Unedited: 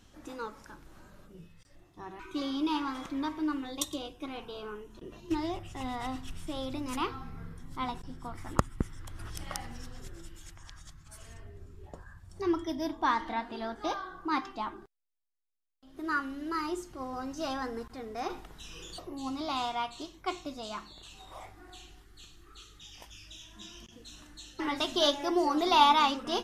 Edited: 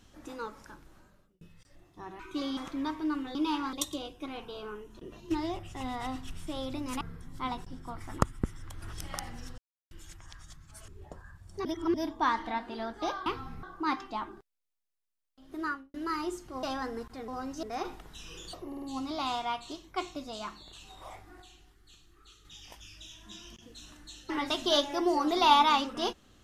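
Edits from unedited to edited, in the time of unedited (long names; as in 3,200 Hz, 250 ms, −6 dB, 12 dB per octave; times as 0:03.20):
0:00.70–0:01.41: fade out
0:02.57–0:02.95: move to 0:03.73
0:07.01–0:07.38: move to 0:14.08
0:09.95–0:10.28: silence
0:11.25–0:11.70: remove
0:12.47–0:12.76: reverse
0:16.04–0:16.39: fade out and dull
0:17.08–0:17.43: move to 0:18.08
0:19.12: stutter 0.05 s, 4 plays
0:21.72–0:22.75: clip gain −5.5 dB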